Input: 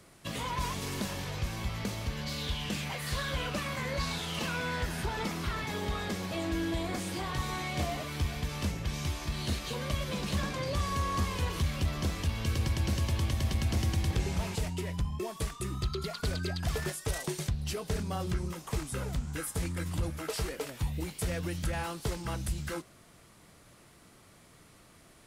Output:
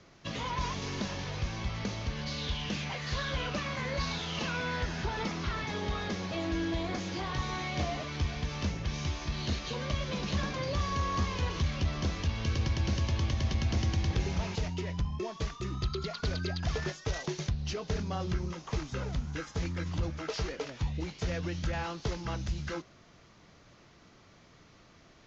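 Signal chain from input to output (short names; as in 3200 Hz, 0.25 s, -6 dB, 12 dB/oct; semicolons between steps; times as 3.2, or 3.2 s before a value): steep low-pass 6700 Hz 96 dB/oct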